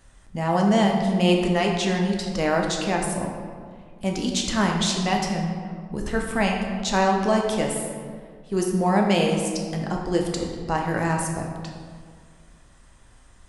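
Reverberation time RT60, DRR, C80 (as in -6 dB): 1.9 s, 0.5 dB, 5.0 dB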